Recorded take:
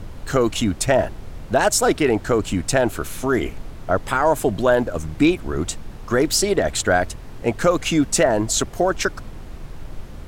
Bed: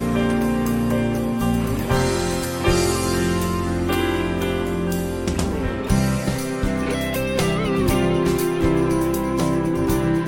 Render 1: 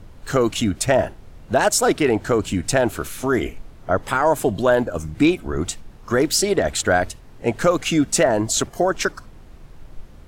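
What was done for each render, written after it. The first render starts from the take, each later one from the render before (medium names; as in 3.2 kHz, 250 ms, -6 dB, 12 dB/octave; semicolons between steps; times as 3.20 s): noise print and reduce 8 dB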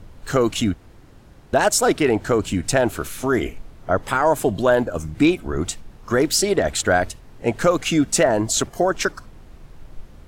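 0.74–1.53 s: room tone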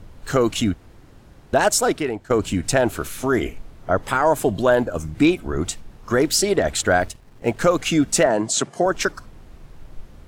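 1.74–2.30 s: fade out, to -19 dB; 7.00–7.60 s: companding laws mixed up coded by A; 8.26–8.86 s: Chebyshev band-pass 140–9200 Hz, order 3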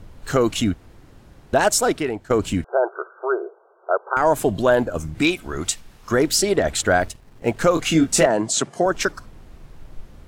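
2.64–4.17 s: brick-wall FIR band-pass 350–1600 Hz; 5.21–6.11 s: tilt shelf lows -5.5 dB, about 1.1 kHz; 7.74–8.26 s: doubling 25 ms -5 dB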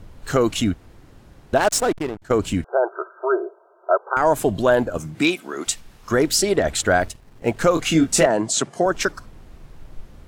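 1.57–2.22 s: hysteresis with a dead band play -19.5 dBFS; 2.91–3.98 s: comb 3.1 ms, depth 61%; 4.97–5.66 s: high-pass 95 Hz -> 260 Hz 24 dB/octave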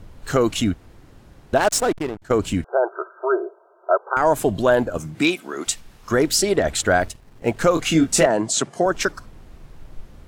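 no audible change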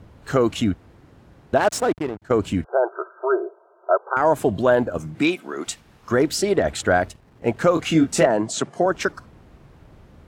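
high-pass 63 Hz; treble shelf 3.7 kHz -9 dB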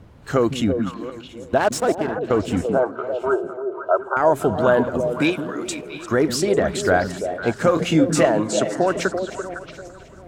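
backward echo that repeats 367 ms, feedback 47%, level -14 dB; repeats whose band climbs or falls 169 ms, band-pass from 180 Hz, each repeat 1.4 oct, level -2 dB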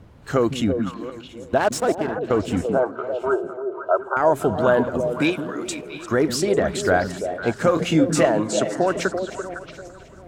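trim -1 dB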